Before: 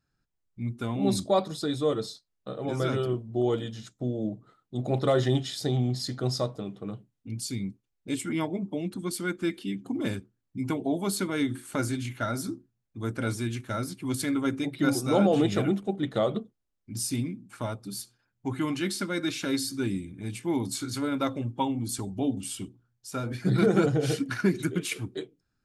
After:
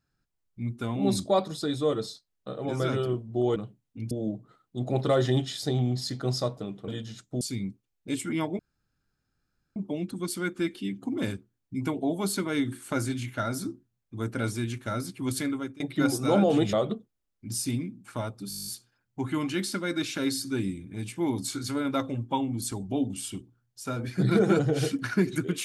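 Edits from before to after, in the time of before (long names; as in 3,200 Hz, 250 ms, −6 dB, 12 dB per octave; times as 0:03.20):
0:03.56–0:04.09: swap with 0:06.86–0:07.41
0:08.59: splice in room tone 1.17 s
0:14.23–0:14.63: fade out, to −23 dB
0:15.56–0:16.18: remove
0:17.94: stutter 0.02 s, 10 plays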